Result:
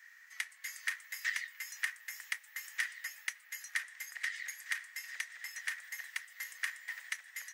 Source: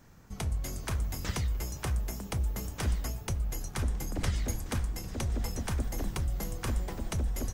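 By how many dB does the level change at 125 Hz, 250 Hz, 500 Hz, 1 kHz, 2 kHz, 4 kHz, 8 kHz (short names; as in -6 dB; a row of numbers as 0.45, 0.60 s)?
under -40 dB, under -40 dB, under -30 dB, -13.0 dB, +9.0 dB, -2.0 dB, -4.0 dB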